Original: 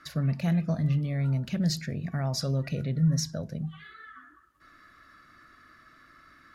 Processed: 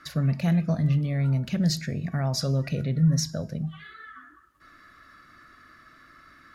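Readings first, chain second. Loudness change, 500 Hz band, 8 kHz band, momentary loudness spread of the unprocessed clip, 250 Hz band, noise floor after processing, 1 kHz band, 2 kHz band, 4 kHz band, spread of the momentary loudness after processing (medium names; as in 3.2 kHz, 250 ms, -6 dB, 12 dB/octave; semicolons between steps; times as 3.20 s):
+3.0 dB, +3.0 dB, +3.0 dB, 13 LU, +3.0 dB, -55 dBFS, +3.0 dB, +3.0 dB, +3.0 dB, 13 LU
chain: de-hum 316.9 Hz, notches 38; trim +3 dB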